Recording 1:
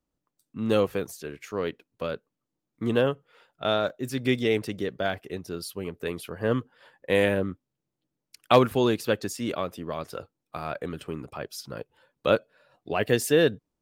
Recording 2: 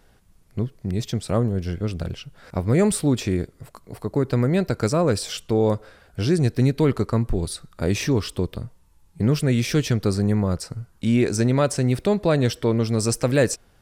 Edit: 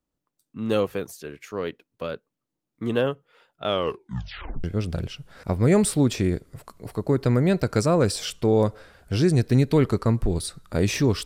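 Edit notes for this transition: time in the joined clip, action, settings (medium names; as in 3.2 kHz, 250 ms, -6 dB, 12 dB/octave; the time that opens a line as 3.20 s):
recording 1
3.65 s: tape stop 0.99 s
4.64 s: go over to recording 2 from 1.71 s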